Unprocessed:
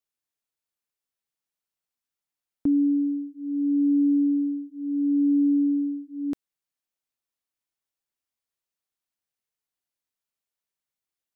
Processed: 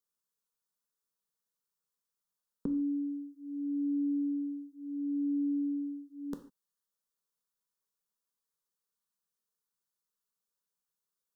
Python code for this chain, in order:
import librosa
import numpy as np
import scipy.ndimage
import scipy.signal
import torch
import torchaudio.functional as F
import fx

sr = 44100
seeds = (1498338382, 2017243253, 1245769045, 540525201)

y = fx.fixed_phaser(x, sr, hz=460.0, stages=8)
y = fx.rev_gated(y, sr, seeds[0], gate_ms=170, shape='falling', drr_db=5.5)